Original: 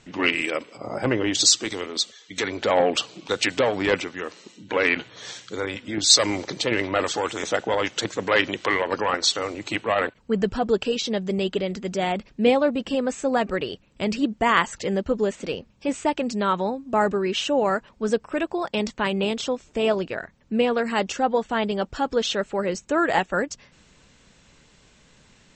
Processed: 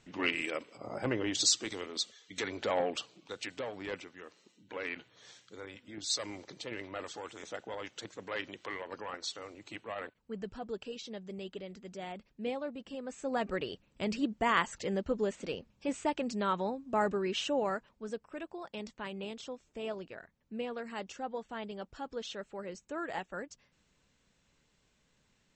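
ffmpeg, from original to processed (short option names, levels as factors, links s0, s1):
-af "volume=0.891,afade=t=out:st=2.62:d=0.58:silence=0.398107,afade=t=in:st=13.03:d=0.48:silence=0.354813,afade=t=out:st=17.48:d=0.58:silence=0.398107"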